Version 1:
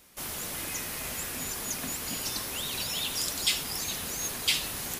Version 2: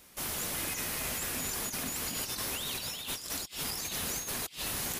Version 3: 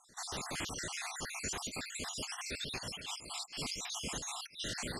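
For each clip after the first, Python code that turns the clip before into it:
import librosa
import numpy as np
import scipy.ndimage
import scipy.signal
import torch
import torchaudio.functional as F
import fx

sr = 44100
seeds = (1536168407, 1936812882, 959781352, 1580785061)

y1 = fx.over_compress(x, sr, threshold_db=-35.0, ratio=-0.5)
y1 = y1 * 10.0 ** (-1.0 / 20.0)
y2 = fx.spec_dropout(y1, sr, seeds[0], share_pct=58)
y2 = scipy.signal.sosfilt(scipy.signal.butter(4, 8200.0, 'lowpass', fs=sr, output='sos'), y2)
y2 = y2 * 10.0 ** (1.0 / 20.0)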